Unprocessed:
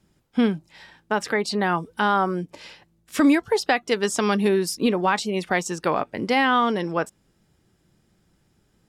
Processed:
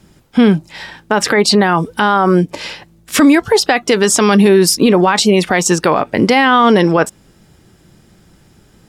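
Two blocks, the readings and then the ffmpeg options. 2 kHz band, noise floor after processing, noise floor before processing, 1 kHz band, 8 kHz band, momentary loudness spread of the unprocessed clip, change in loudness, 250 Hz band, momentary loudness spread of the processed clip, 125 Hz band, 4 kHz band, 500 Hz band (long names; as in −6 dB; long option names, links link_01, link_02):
+9.5 dB, −50 dBFS, −66 dBFS, +9.0 dB, +16.0 dB, 9 LU, +11.0 dB, +11.0 dB, 10 LU, +14.0 dB, +13.0 dB, +11.5 dB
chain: -af "alimiter=level_in=17.5dB:limit=-1dB:release=50:level=0:latency=1,volume=-1dB"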